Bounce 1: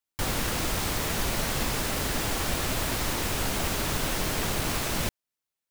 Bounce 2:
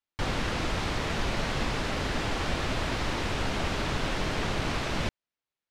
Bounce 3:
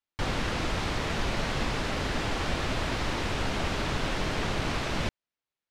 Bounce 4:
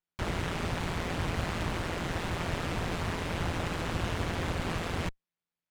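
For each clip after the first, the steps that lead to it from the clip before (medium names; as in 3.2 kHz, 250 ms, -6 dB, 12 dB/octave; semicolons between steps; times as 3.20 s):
low-pass 4.1 kHz 12 dB/octave
no audible change
ring modulator 85 Hz; sliding maximum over 5 samples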